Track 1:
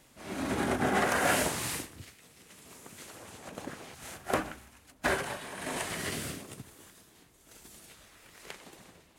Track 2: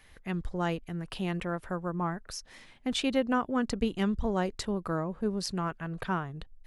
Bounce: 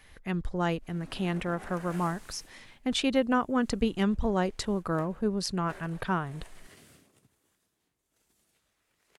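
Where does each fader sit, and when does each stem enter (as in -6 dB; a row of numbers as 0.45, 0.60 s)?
-19.5, +2.0 dB; 0.65, 0.00 s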